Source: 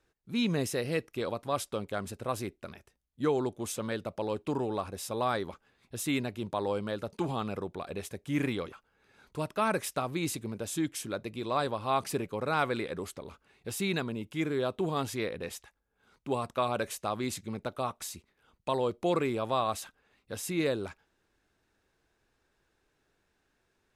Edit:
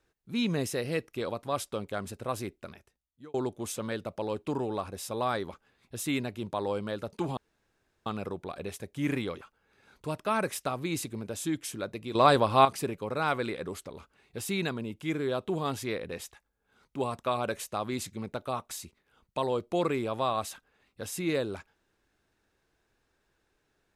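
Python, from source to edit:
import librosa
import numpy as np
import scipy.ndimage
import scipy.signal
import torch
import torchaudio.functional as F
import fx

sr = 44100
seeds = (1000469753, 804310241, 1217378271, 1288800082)

y = fx.edit(x, sr, fx.fade_out_span(start_s=2.63, length_s=0.71),
    fx.insert_room_tone(at_s=7.37, length_s=0.69),
    fx.clip_gain(start_s=11.46, length_s=0.5, db=9.0), tone=tone)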